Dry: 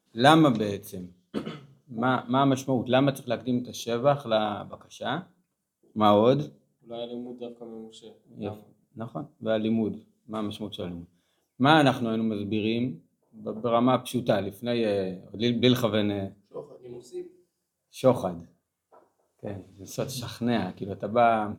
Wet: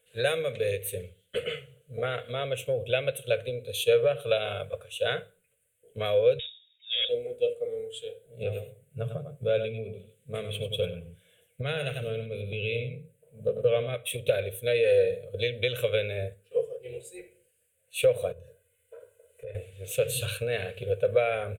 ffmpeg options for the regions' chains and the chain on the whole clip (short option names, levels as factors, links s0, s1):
-filter_complex "[0:a]asettb=1/sr,asplit=3[s0][s1][s2];[s0]atrim=end=6.394[s3];[s1]atrim=start=6.39:end=7.09,asetpts=PTS-STARTPTS,afade=t=in:d=0.004:c=qsin,afade=t=out:st=0.696:d=0.004:c=qsin,highpass=44,asoftclip=type=hard:threshold=0.0266,lowpass=f=3300:t=q:w=0.5098,lowpass=f=3300:t=q:w=0.6013,lowpass=f=3300:t=q:w=0.9,lowpass=f=3300:t=q:w=2.563,afreqshift=-3900[s4];[s2]atrim=start=7.086[s5];[s3][s4]acrossfade=d=0.004:c1=hsin:c2=qsin[s6];[s6][s5]acrossfade=d=0.004:c1=qsin:c2=hsin,asettb=1/sr,asplit=3[s7][s8][s9];[s7]atrim=end=8.424[s10];[s8]atrim=start=8.42:end=13.95,asetpts=PTS-STARTPTS,afade=t=in:d=0.004:c=qsin,afade=t=out:st=5.526:d=0.004:c=qsin,equalizer=f=160:t=o:w=0.91:g=12.5,aecho=1:1:97:0.355,atrim=end_sample=243873[s11];[s9]atrim=start=13.946[s12];[s10][s11]acrossfade=d=0.004:c1=hsin:c2=qsin[s13];[s13][s12]acrossfade=d=0.004:c1=qsin:c2=hsin,asettb=1/sr,asplit=3[s14][s15][s16];[s14]atrim=end=18.324[s17];[s15]atrim=start=18.32:end=19.55,asetpts=PTS-STARTPTS,afade=t=in:d=0.004:c=qsin,afade=t=out:st=1.226:d=0.004:c=qsin,aecho=1:1:2:0.87,atrim=end_sample=54243,acompressor=threshold=0.00355:ratio=4:attack=3.2:release=140:knee=1:detection=peak[s18];[s16]atrim=start=19.546[s19];[s17][s18]acrossfade=d=0.004:c1=hsin:c2=qsin[s20];[s20][s19]acrossfade=d=0.004:c1=qsin:c2=hsin,equalizer=f=1400:t=o:w=1.5:g=-13.5,acompressor=threshold=0.0316:ratio=10,firequalizer=gain_entry='entry(110,0);entry(180,-18);entry(300,-29);entry(470,11);entry(870,-15);entry(1500,12);entry(2600,14);entry(5200,-18);entry(8400,6);entry(14000,1)':delay=0.05:min_phase=1,volume=2.24"